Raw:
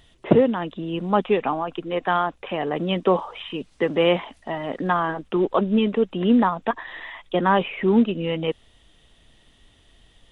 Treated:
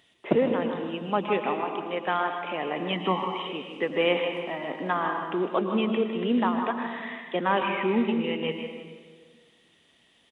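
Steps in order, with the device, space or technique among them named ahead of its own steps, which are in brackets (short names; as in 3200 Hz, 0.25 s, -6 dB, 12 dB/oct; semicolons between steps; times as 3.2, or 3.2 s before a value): PA in a hall (HPF 190 Hz 12 dB/oct; bell 2300 Hz +6 dB 0.57 oct; echo 0.155 s -11 dB; reverb RT60 1.6 s, pre-delay 0.101 s, DRR 5.5 dB); 2.93–3.47 comb 1 ms, depth 58%; gain -6 dB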